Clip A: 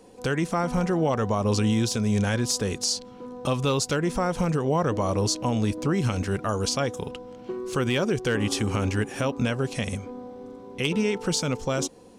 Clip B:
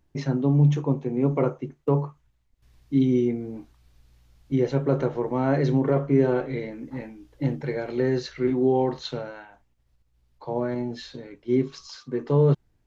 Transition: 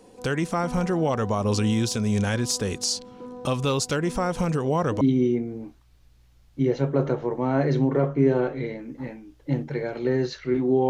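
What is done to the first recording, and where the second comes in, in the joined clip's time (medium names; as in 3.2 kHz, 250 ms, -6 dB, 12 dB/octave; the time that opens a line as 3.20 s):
clip A
5.01 s: go over to clip B from 2.94 s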